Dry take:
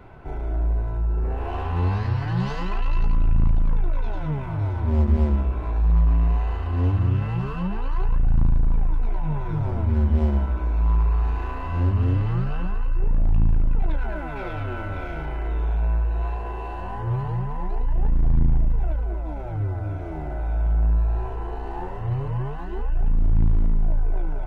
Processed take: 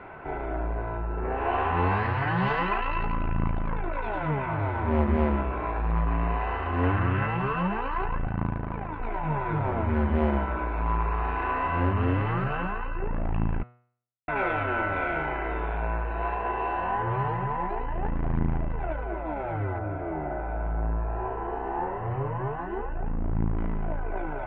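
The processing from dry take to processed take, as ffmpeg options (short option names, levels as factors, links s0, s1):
-filter_complex "[0:a]asettb=1/sr,asplit=3[s0][s1][s2];[s0]atrim=end=6.834[s3];[s1]atrim=start=6.83:end=7.26,asetpts=PTS-STARTPTS,afade=t=in:d=0.004:c=qsin,afade=t=out:st=0.426:d=0.004:c=qsin,equalizer=f=1600:w=1.5:g=5.5[s4];[s2]atrim=start=7.256[s5];[s3][s4]acrossfade=d=0.004:c1=hsin:c2=qsin[s6];[s6][s5]acrossfade=d=0.004:c1=qsin:c2=hsin,asettb=1/sr,asplit=3[s7][s8][s9];[s7]atrim=end=8.274[s10];[s8]atrim=start=8.27:end=9,asetpts=PTS-STARTPTS,afade=t=in:d=0.004:c=qsin,afade=t=out:st=0.726:d=0.004:c=qsin,highpass=58[s11];[s9]atrim=start=8.996[s12];[s10][s11]acrossfade=d=0.004:c1=hsin:c2=qsin[s13];[s13][s12]acrossfade=d=0.004:c1=qsin:c2=hsin,asettb=1/sr,asplit=3[s14][s15][s16];[s14]atrim=end=19.784[s17];[s15]atrim=start=19.78:end=23.58,asetpts=PTS-STARTPTS,afade=t=in:d=0.004:c=qsin,afade=t=out:st=3.796:d=0.004:c=qsin,lowpass=f=1100:p=1[s18];[s16]atrim=start=23.576[s19];[s17][s18]acrossfade=d=0.004:c1=hsin:c2=qsin[s20];[s20][s19]acrossfade=d=0.004:c1=qsin:c2=hsin,asplit=3[s21][s22][s23];[s21]atrim=end=13.63,asetpts=PTS-STARTPTS,afade=t=out:st=13.626:d=0.004:c=hsin[s24];[s22]atrim=start=13.63:end=14.28,asetpts=PTS-STARTPTS,volume=0[s25];[s23]atrim=start=14.28,asetpts=PTS-STARTPTS,afade=t=in:d=0.004:c=hsin[s26];[s24][s25][s26]concat=n=3:v=0:a=1,lowpass=f=2300:w=0.5412,lowpass=f=2300:w=1.3066,aemphasis=mode=production:type=riaa,bandreject=f=121.6:t=h:w=4,bandreject=f=243.2:t=h:w=4,bandreject=f=364.8:t=h:w=4,bandreject=f=486.4:t=h:w=4,bandreject=f=608:t=h:w=4,bandreject=f=729.6:t=h:w=4,bandreject=f=851.2:t=h:w=4,bandreject=f=972.8:t=h:w=4,bandreject=f=1094.4:t=h:w=4,bandreject=f=1216:t=h:w=4,bandreject=f=1337.6:t=h:w=4,bandreject=f=1459.2:t=h:w=4,bandreject=f=1580.8:t=h:w=4,bandreject=f=1702.4:t=h:w=4,bandreject=f=1824:t=h:w=4,bandreject=f=1945.6:t=h:w=4,bandreject=f=2067.2:t=h:w=4,bandreject=f=2188.8:t=h:w=4,bandreject=f=2310.4:t=h:w=4,bandreject=f=2432:t=h:w=4,bandreject=f=2553.6:t=h:w=4,bandreject=f=2675.2:t=h:w=4,bandreject=f=2796.8:t=h:w=4,bandreject=f=2918.4:t=h:w=4,bandreject=f=3040:t=h:w=4,bandreject=f=3161.6:t=h:w=4,bandreject=f=3283.2:t=h:w=4,bandreject=f=3404.8:t=h:w=4,bandreject=f=3526.4:t=h:w=4,bandreject=f=3648:t=h:w=4,bandreject=f=3769.6:t=h:w=4,bandreject=f=3891.2:t=h:w=4,bandreject=f=4012.8:t=h:w=4,bandreject=f=4134.4:t=h:w=4,volume=2.37"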